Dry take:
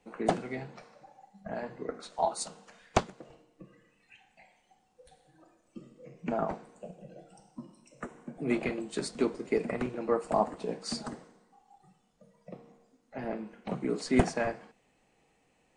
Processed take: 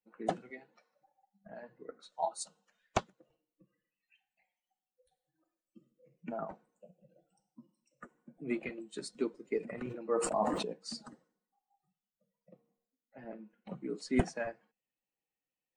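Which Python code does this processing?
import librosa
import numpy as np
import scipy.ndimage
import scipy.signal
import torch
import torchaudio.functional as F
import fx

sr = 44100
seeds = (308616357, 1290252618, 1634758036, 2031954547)

y = fx.bin_expand(x, sr, power=1.5)
y = fx.highpass(y, sr, hz=230.0, slope=24, at=(0.5, 0.93))
y = fx.sustainer(y, sr, db_per_s=39.0, at=(9.6, 10.73))
y = y * 10.0 ** (-3.5 / 20.0)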